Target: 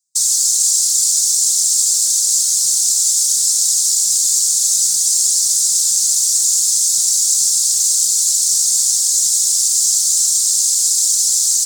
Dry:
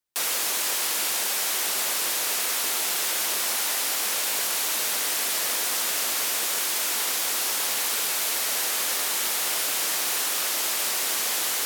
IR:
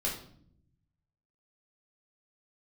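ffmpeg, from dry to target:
-af "afftfilt=real='hypot(re,im)*cos(2*PI*random(0))':imag='hypot(re,im)*sin(2*PI*random(1))':win_size=512:overlap=0.75,aexciter=amount=9:drive=8.8:freq=4.1k,firequalizer=gain_entry='entry(110,0);entry(150,12);entry(230,-8);entry(340,-11);entry(1100,-13);entry(2200,-14);entry(4100,-5);entry(7400,1);entry(12000,-21)':delay=0.05:min_phase=1"

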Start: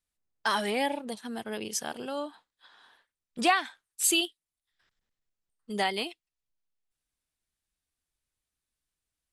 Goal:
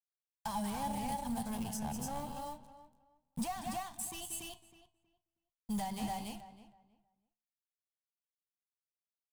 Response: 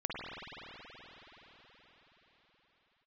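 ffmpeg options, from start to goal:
-filter_complex "[0:a]acrusher=bits=6:mode=log:mix=0:aa=0.000001,asplit=2[a][b];[b]aecho=0:1:183.7|285.7:0.251|0.501[c];[a][c]amix=inputs=2:normalize=0,alimiter=limit=-18.5dB:level=0:latency=1:release=239,acrossover=split=780|2500[d][e][f];[d]acompressor=threshold=-33dB:ratio=4[g];[e]acompressor=threshold=-40dB:ratio=4[h];[f]acompressor=threshold=-45dB:ratio=4[i];[g][h][i]amix=inputs=3:normalize=0,aeval=exprs='sgn(val(0))*max(abs(val(0))-0.00335,0)':c=same,flanger=delay=9.5:depth=4.8:regen=84:speed=0.24:shape=triangular,asoftclip=type=hard:threshold=-39.5dB,firequalizer=gain_entry='entry(160,0);entry(360,-29);entry(850,-7);entry(1300,-23);entry(8400,-7)':delay=0.05:min_phase=1,asplit=2[j][k];[k]adelay=319,lowpass=f=2.3k:p=1,volume=-13.5dB,asplit=2[l][m];[m]adelay=319,lowpass=f=2.3k:p=1,volume=0.22,asplit=2[n][o];[o]adelay=319,lowpass=f=2.3k:p=1,volume=0.22[p];[l][n][p]amix=inputs=3:normalize=0[q];[j][q]amix=inputs=2:normalize=0,volume=18dB"

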